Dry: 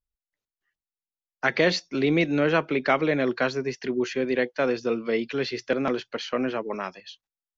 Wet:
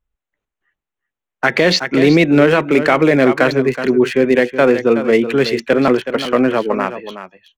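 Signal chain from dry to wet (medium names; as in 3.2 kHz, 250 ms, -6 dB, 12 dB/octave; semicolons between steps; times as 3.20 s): local Wiener filter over 9 samples; delay 372 ms -12 dB; loudness maximiser +14 dB; trim -1 dB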